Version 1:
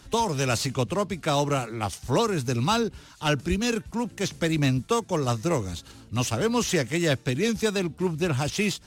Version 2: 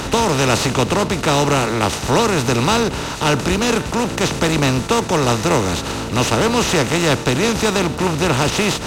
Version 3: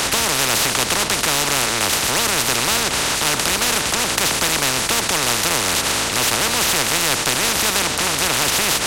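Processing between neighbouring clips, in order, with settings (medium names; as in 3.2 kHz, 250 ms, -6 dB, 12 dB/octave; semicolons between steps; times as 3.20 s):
spectral levelling over time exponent 0.4; trim +3 dB
overdrive pedal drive 11 dB, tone 2.9 kHz, clips at -2 dBFS; spectrum-flattening compressor 4:1; trim +1.5 dB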